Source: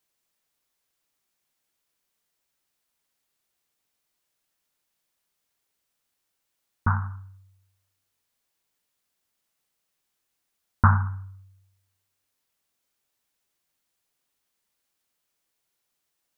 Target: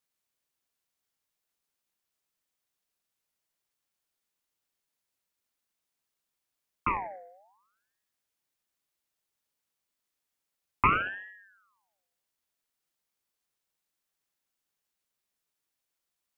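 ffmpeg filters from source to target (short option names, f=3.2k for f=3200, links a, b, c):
-filter_complex "[0:a]asettb=1/sr,asplit=3[a][b][c];[a]atrim=end=10.914[d];[b]atrim=start=10.91:end=11.33,asetpts=PTS-STARTPTS,afade=t=in:d=0.004:c=qsin,afade=t=out:st=0.416:d=0.004:c=qsin,equalizer=f=610:w=1.2:g=11.5[e];[c]atrim=start=11.326[f];[d][e]acrossfade=d=0.004:c1=hsin:c2=qsin[g];[g][f]acrossfade=d=0.004:c1=qsin:c2=hsin,aeval=exprs='val(0)*sin(2*PI*1200*n/s+1200*0.5/0.62*sin(2*PI*0.62*n/s))':c=same,volume=-3.5dB"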